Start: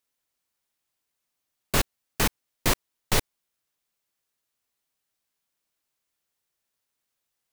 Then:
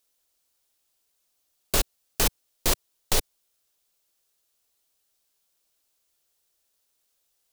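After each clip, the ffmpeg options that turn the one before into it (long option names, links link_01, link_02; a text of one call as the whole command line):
ffmpeg -i in.wav -af "equalizer=frequency=125:width_type=o:width=1:gain=-10,equalizer=frequency=250:width_type=o:width=1:gain=-6,equalizer=frequency=1000:width_type=o:width=1:gain=-5,equalizer=frequency=2000:width_type=o:width=1:gain=-7,alimiter=limit=-20dB:level=0:latency=1:release=50,volume=9dB" out.wav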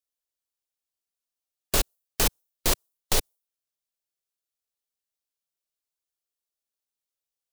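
ffmpeg -i in.wav -af "afftdn=noise_reduction=17:noise_floor=-49" out.wav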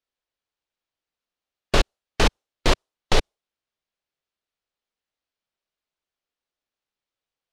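ffmpeg -i in.wav -af "lowpass=3500,volume=7.5dB" out.wav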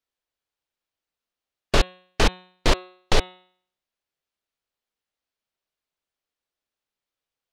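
ffmpeg -i in.wav -af "bandreject=frequency=182.7:width_type=h:width=4,bandreject=frequency=365.4:width_type=h:width=4,bandreject=frequency=548.1:width_type=h:width=4,bandreject=frequency=730.8:width_type=h:width=4,bandreject=frequency=913.5:width_type=h:width=4,bandreject=frequency=1096.2:width_type=h:width=4,bandreject=frequency=1278.9:width_type=h:width=4,bandreject=frequency=1461.6:width_type=h:width=4,bandreject=frequency=1644.3:width_type=h:width=4,bandreject=frequency=1827:width_type=h:width=4,bandreject=frequency=2009.7:width_type=h:width=4,bandreject=frequency=2192.4:width_type=h:width=4,bandreject=frequency=2375.1:width_type=h:width=4,bandreject=frequency=2557.8:width_type=h:width=4,bandreject=frequency=2740.5:width_type=h:width=4,bandreject=frequency=2923.2:width_type=h:width=4,bandreject=frequency=3105.9:width_type=h:width=4,bandreject=frequency=3288.6:width_type=h:width=4,bandreject=frequency=3471.3:width_type=h:width=4,bandreject=frequency=3654:width_type=h:width=4,bandreject=frequency=3836.7:width_type=h:width=4,bandreject=frequency=4019.4:width_type=h:width=4,bandreject=frequency=4202.1:width_type=h:width=4" out.wav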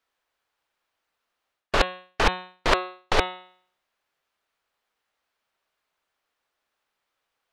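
ffmpeg -i in.wav -af "equalizer=frequency=1200:width_type=o:width=2.8:gain=11,areverse,acompressor=threshold=-20dB:ratio=12,areverse,volume=3dB" out.wav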